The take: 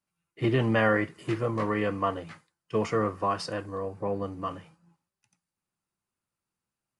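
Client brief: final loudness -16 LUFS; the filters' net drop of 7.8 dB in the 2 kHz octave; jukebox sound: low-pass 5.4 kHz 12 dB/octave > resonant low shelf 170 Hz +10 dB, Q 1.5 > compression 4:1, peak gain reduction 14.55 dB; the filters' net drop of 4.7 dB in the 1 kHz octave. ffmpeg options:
-af "lowpass=5400,lowshelf=f=170:t=q:w=1.5:g=10,equalizer=f=1000:t=o:g=-3,equalizer=f=2000:t=o:g=-8.5,acompressor=threshold=0.0251:ratio=4,volume=10"

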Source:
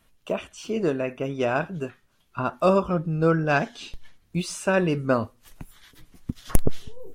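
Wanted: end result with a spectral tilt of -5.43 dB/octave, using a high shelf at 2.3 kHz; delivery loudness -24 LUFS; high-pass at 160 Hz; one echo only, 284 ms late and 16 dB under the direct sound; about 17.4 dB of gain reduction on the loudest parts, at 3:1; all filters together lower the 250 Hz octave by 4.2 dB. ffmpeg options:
-af "highpass=160,equalizer=f=250:t=o:g=-4.5,highshelf=f=2300:g=-8.5,acompressor=threshold=0.00794:ratio=3,aecho=1:1:284:0.158,volume=8.91"

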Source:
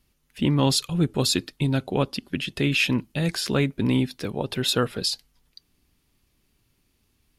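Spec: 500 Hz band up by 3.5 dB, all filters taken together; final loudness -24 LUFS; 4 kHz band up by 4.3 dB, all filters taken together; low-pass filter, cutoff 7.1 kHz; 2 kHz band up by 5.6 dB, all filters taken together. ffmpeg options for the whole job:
-af "lowpass=7100,equalizer=f=500:t=o:g=4,equalizer=f=2000:t=o:g=6,equalizer=f=4000:t=o:g=4,volume=0.75"

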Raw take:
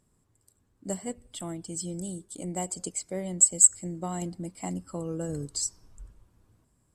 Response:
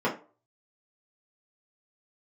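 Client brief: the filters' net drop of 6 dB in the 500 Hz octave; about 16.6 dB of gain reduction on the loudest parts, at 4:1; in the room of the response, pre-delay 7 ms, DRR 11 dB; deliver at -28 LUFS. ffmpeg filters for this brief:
-filter_complex "[0:a]equalizer=f=500:t=o:g=-8,acompressor=threshold=0.02:ratio=4,asplit=2[s0][s1];[1:a]atrim=start_sample=2205,adelay=7[s2];[s1][s2]afir=irnorm=-1:irlink=0,volume=0.0668[s3];[s0][s3]amix=inputs=2:normalize=0,volume=2.99"

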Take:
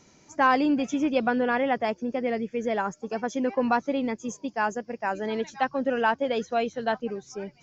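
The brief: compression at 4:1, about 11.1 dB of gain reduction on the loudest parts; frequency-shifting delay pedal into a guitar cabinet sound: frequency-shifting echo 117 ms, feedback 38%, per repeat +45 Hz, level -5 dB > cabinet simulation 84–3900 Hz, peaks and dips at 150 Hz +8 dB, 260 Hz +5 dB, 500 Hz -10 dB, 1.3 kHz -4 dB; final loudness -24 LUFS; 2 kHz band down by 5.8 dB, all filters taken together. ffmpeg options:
-filter_complex "[0:a]equalizer=f=2000:t=o:g=-6.5,acompressor=threshold=0.0224:ratio=4,asplit=6[s0][s1][s2][s3][s4][s5];[s1]adelay=117,afreqshift=45,volume=0.562[s6];[s2]adelay=234,afreqshift=90,volume=0.214[s7];[s3]adelay=351,afreqshift=135,volume=0.0813[s8];[s4]adelay=468,afreqshift=180,volume=0.0309[s9];[s5]adelay=585,afreqshift=225,volume=0.0117[s10];[s0][s6][s7][s8][s9][s10]amix=inputs=6:normalize=0,highpass=84,equalizer=f=150:t=q:w=4:g=8,equalizer=f=260:t=q:w=4:g=5,equalizer=f=500:t=q:w=4:g=-10,equalizer=f=1300:t=q:w=4:g=-4,lowpass=f=3900:w=0.5412,lowpass=f=3900:w=1.3066,volume=3.55"

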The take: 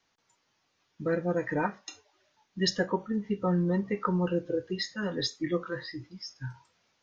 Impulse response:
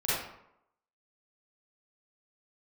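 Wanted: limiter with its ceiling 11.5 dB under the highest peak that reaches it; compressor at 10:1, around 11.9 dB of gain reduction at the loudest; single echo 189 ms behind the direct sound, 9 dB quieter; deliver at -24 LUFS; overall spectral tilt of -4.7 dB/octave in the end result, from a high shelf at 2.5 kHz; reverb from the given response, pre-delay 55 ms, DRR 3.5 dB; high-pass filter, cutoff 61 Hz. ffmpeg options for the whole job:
-filter_complex "[0:a]highpass=61,highshelf=f=2500:g=4.5,acompressor=threshold=0.0224:ratio=10,alimiter=level_in=2.82:limit=0.0631:level=0:latency=1,volume=0.355,aecho=1:1:189:0.355,asplit=2[s0][s1];[1:a]atrim=start_sample=2205,adelay=55[s2];[s1][s2]afir=irnorm=-1:irlink=0,volume=0.224[s3];[s0][s3]amix=inputs=2:normalize=0,volume=6.68"

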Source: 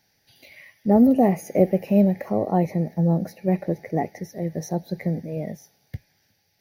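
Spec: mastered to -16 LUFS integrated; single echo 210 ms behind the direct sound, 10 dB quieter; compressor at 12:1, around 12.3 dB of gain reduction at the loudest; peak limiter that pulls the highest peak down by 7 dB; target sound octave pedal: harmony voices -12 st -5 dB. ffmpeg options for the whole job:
-filter_complex "[0:a]acompressor=threshold=0.0631:ratio=12,alimiter=limit=0.0794:level=0:latency=1,aecho=1:1:210:0.316,asplit=2[s0][s1];[s1]asetrate=22050,aresample=44100,atempo=2,volume=0.562[s2];[s0][s2]amix=inputs=2:normalize=0,volume=6.31"

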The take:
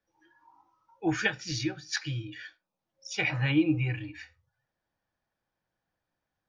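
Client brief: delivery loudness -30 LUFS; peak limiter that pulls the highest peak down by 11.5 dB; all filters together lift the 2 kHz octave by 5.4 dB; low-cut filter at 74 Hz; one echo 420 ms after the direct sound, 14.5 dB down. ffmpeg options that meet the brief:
-af "highpass=74,equalizer=f=2000:t=o:g=6.5,alimiter=limit=0.0891:level=0:latency=1,aecho=1:1:420:0.188,volume=1.33"

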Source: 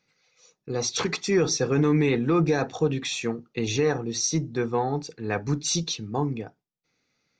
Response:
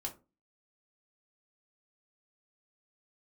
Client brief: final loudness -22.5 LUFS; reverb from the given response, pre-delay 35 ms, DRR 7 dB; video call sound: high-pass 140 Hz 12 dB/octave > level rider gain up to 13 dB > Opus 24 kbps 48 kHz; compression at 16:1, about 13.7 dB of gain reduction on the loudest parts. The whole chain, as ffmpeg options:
-filter_complex "[0:a]acompressor=threshold=0.0282:ratio=16,asplit=2[s0][s1];[1:a]atrim=start_sample=2205,adelay=35[s2];[s1][s2]afir=irnorm=-1:irlink=0,volume=0.473[s3];[s0][s3]amix=inputs=2:normalize=0,highpass=140,dynaudnorm=m=4.47,volume=4.73" -ar 48000 -c:a libopus -b:a 24k

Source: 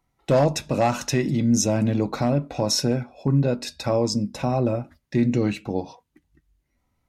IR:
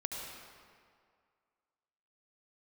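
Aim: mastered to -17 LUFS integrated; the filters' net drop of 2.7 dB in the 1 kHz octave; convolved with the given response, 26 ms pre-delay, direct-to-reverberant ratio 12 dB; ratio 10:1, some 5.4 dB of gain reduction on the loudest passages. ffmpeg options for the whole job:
-filter_complex "[0:a]equalizer=f=1000:t=o:g=-4,acompressor=threshold=0.1:ratio=10,asplit=2[s0][s1];[1:a]atrim=start_sample=2205,adelay=26[s2];[s1][s2]afir=irnorm=-1:irlink=0,volume=0.211[s3];[s0][s3]amix=inputs=2:normalize=0,volume=3.16"

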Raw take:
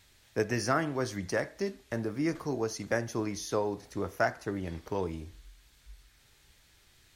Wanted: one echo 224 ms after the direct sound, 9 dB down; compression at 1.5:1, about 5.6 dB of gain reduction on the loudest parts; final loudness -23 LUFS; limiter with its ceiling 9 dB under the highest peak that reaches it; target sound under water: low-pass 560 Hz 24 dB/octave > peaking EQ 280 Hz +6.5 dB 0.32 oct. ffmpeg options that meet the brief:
-af "acompressor=threshold=0.0126:ratio=1.5,alimiter=level_in=1.5:limit=0.0631:level=0:latency=1,volume=0.668,lowpass=f=560:w=0.5412,lowpass=f=560:w=1.3066,equalizer=f=280:t=o:w=0.32:g=6.5,aecho=1:1:224:0.355,volume=5.96"

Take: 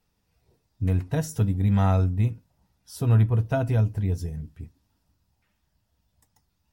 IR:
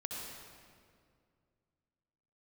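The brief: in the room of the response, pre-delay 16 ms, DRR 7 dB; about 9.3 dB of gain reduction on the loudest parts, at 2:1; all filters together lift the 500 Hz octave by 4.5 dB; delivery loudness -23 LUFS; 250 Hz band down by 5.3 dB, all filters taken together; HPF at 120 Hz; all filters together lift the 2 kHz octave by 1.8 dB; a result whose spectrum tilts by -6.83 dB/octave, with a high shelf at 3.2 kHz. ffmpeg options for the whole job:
-filter_complex "[0:a]highpass=120,equalizer=f=250:t=o:g=-8.5,equalizer=f=500:t=o:g=8,equalizer=f=2000:t=o:g=5,highshelf=f=3200:g=-9,acompressor=threshold=0.0158:ratio=2,asplit=2[s0][s1];[1:a]atrim=start_sample=2205,adelay=16[s2];[s1][s2]afir=irnorm=-1:irlink=0,volume=0.422[s3];[s0][s3]amix=inputs=2:normalize=0,volume=4.22"

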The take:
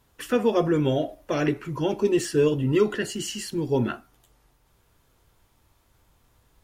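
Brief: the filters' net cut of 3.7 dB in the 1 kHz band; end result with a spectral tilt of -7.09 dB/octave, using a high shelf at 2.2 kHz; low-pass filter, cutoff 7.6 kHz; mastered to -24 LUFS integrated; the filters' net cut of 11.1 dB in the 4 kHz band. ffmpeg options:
-af "lowpass=7600,equalizer=f=1000:t=o:g=-3,highshelf=f=2200:g=-8.5,equalizer=f=4000:t=o:g=-7.5,volume=1.19"

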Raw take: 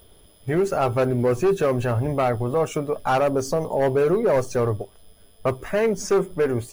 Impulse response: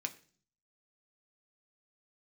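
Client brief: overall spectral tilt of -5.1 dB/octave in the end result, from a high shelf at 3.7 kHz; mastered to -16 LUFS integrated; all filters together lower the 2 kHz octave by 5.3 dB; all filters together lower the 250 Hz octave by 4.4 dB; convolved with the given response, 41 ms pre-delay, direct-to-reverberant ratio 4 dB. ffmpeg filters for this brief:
-filter_complex "[0:a]equalizer=f=250:t=o:g=-6.5,equalizer=f=2000:t=o:g=-6.5,highshelf=f=3700:g=-3,asplit=2[s0][s1];[1:a]atrim=start_sample=2205,adelay=41[s2];[s1][s2]afir=irnorm=-1:irlink=0,volume=0.631[s3];[s0][s3]amix=inputs=2:normalize=0,volume=2.51"

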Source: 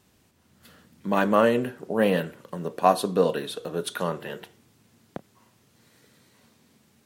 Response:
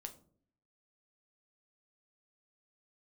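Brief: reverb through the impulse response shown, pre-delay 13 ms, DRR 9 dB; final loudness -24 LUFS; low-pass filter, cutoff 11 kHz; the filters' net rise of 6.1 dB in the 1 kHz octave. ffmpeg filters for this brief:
-filter_complex "[0:a]lowpass=11000,equalizer=f=1000:t=o:g=8,asplit=2[s0][s1];[1:a]atrim=start_sample=2205,adelay=13[s2];[s1][s2]afir=irnorm=-1:irlink=0,volume=0.596[s3];[s0][s3]amix=inputs=2:normalize=0,volume=0.75"

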